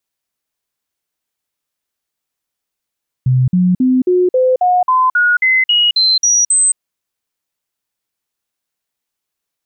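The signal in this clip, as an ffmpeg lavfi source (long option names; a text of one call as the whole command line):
ffmpeg -f lavfi -i "aevalsrc='0.376*clip(min(mod(t,0.27),0.22-mod(t,0.27))/0.005,0,1)*sin(2*PI*128*pow(2,floor(t/0.27)/2)*mod(t,0.27))':duration=3.51:sample_rate=44100" out.wav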